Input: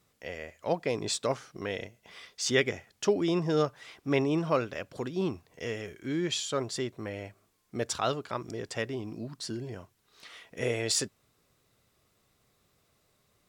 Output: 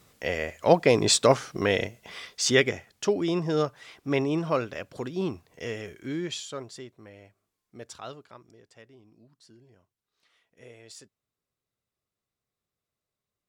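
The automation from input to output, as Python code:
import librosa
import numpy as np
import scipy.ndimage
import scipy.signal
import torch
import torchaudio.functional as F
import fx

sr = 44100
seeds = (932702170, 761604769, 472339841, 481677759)

y = fx.gain(x, sr, db=fx.line((1.81, 10.5), (3.05, 1.0), (6.02, 1.0), (6.95, -11.0), (8.17, -11.0), (8.63, -19.0)))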